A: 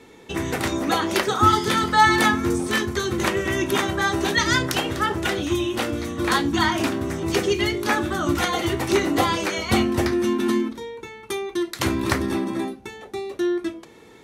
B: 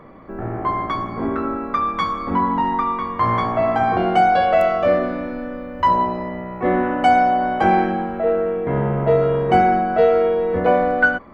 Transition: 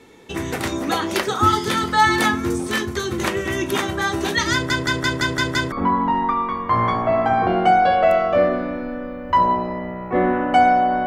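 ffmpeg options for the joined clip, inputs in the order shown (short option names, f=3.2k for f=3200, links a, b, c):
-filter_complex "[0:a]apad=whole_dur=11.06,atrim=end=11.06,asplit=7[a][b][c][d][e][f][g];[a]atrim=end=4.702[h];[b]atrim=start=4.528:end=4.702[i];[c]atrim=start=4.528:end=4.702[j];[d]atrim=start=4.528:end=4.702[k];[e]atrim=start=4.528:end=4.702[l];[f]atrim=start=4.528:end=4.702[m];[g]atrim=start=4.528:end=4.702[n];[1:a]atrim=start=2.218:end=7.56[o];[h][i]acrossfade=d=0.004:c1=hsin:c2=hsin[p];[p][j]acrossfade=d=0.004:c1=hsin:c2=hsin[q];[q][k]acrossfade=d=0.004:c1=hsin:c2=hsin[r];[r][l]acrossfade=d=0.004:c1=hsin:c2=hsin[s];[s][m]acrossfade=d=0.004:c1=hsin:c2=hsin[t];[t][n]acrossfade=d=0.004:c1=hsin:c2=hsin[u];[u][o]acrossfade=d=0.004:c1=hsin:c2=hsin"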